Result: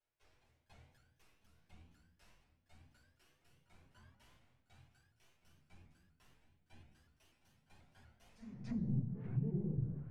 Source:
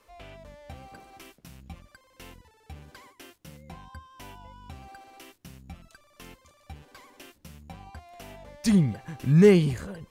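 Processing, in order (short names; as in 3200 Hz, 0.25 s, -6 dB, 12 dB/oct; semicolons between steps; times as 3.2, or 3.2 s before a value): passive tone stack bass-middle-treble 5-5-5; treble ducked by the level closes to 1300 Hz, closed at -37 dBFS; crossover distortion -53 dBFS; limiter -38.5 dBFS, peak gain reduction 11.5 dB; high shelf 2400 Hz -9.5 dB; pre-echo 0.286 s -13.5 dB; shoebox room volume 250 m³, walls mixed, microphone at 4.9 m; treble ducked by the level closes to 430 Hz, closed at -29.5 dBFS; notch 1200 Hz, Q 25; resonator 120 Hz, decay 0.71 s, harmonics all, mix 70%; shaped vibrato saw up 4.1 Hz, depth 160 cents; gain +2.5 dB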